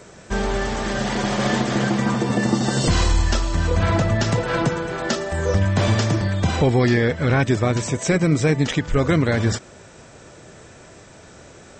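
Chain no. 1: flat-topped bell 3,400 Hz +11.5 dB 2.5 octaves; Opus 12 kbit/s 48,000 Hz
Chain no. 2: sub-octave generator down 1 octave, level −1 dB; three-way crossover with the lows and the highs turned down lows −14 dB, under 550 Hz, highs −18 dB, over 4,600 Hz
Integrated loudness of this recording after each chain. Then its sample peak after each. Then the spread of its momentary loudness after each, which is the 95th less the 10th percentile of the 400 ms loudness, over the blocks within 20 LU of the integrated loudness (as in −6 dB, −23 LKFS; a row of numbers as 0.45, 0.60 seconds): −17.5, −26.5 LKFS; −2.0, −10.0 dBFS; 4, 4 LU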